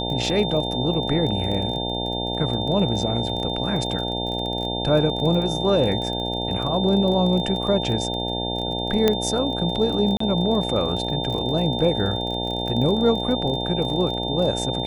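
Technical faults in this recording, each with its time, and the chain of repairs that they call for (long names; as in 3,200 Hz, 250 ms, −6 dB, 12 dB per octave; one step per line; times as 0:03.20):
mains buzz 60 Hz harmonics 15 −28 dBFS
surface crackle 23 per second −28 dBFS
whistle 3,600 Hz −28 dBFS
0:09.08: click −5 dBFS
0:10.17–0:10.20: drop-out 34 ms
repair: click removal
hum removal 60 Hz, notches 15
notch filter 3,600 Hz, Q 30
repair the gap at 0:10.17, 34 ms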